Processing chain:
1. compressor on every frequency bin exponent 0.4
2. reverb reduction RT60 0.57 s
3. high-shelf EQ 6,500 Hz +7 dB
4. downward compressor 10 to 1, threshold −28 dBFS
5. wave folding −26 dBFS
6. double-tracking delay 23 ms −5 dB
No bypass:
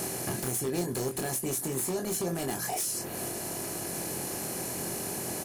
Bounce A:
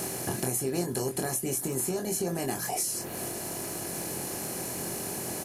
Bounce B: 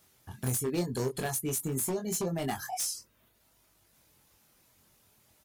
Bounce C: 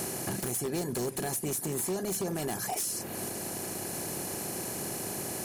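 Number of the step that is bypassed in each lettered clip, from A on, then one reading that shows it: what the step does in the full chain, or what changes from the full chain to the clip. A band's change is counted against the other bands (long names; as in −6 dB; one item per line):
5, distortion level −11 dB
1, 125 Hz band +4.0 dB
6, change in crest factor −3.0 dB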